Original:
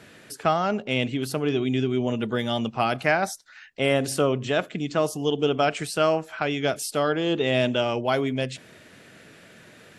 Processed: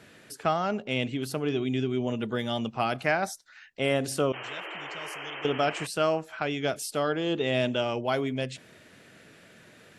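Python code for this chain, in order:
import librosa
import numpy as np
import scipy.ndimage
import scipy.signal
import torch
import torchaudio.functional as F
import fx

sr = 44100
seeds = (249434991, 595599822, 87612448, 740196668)

y = fx.tone_stack(x, sr, knobs='5-5-5', at=(4.32, 5.45))
y = fx.spec_paint(y, sr, seeds[0], shape='noise', start_s=4.33, length_s=1.54, low_hz=300.0, high_hz=3200.0, level_db=-35.0)
y = y * librosa.db_to_amplitude(-4.0)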